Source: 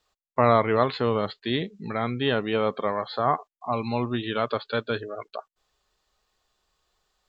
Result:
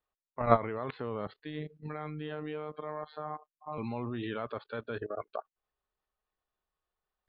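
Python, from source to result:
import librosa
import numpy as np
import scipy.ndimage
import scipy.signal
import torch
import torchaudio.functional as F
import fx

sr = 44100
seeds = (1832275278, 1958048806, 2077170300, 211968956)

y = scipy.signal.sosfilt(scipy.signal.butter(2, 2300.0, 'lowpass', fs=sr, output='sos'), x)
y = fx.level_steps(y, sr, step_db=18)
y = fx.robotise(y, sr, hz=152.0, at=(1.42, 3.78))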